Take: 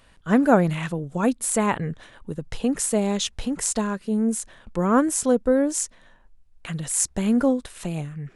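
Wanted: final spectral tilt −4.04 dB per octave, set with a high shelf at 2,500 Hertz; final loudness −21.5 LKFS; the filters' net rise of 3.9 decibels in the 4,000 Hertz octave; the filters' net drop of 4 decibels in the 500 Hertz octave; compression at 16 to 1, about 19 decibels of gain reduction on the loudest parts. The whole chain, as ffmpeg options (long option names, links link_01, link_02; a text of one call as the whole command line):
ffmpeg -i in.wav -af "equalizer=frequency=500:width_type=o:gain=-4.5,highshelf=frequency=2500:gain=-4,equalizer=frequency=4000:width_type=o:gain=8.5,acompressor=threshold=-33dB:ratio=16,volume=16dB" out.wav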